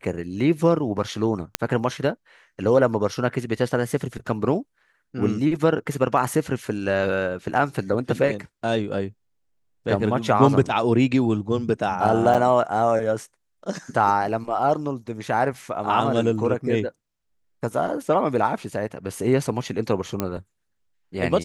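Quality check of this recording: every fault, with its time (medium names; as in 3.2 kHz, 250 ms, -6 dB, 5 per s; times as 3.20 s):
1.55 s: pop -3 dBFS
12.34–12.35 s: dropout 7.1 ms
20.20 s: pop -9 dBFS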